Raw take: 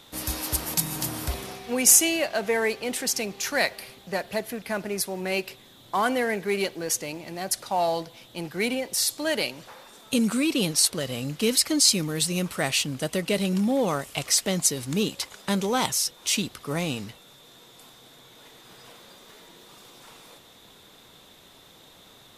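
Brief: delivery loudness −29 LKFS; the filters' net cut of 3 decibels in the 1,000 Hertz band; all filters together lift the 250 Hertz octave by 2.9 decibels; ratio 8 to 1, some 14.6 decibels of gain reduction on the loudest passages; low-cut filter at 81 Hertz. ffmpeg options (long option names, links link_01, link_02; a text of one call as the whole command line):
ffmpeg -i in.wav -af "highpass=81,equalizer=frequency=250:width_type=o:gain=4,equalizer=frequency=1000:width_type=o:gain=-4.5,acompressor=threshold=-27dB:ratio=8,volume=2.5dB" out.wav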